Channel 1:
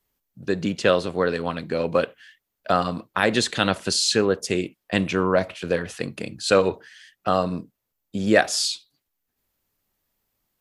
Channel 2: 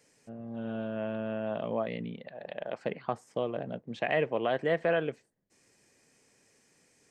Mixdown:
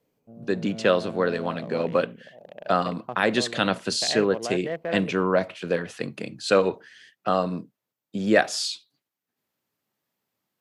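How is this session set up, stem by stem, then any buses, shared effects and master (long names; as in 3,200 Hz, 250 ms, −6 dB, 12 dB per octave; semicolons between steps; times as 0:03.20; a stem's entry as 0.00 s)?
−1.5 dB, 0.00 s, no send, high-pass filter 120 Hz 24 dB per octave; high-shelf EQ 6,800 Hz −8 dB
−2.5 dB, 0.00 s, no send, adaptive Wiener filter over 25 samples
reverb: not used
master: no processing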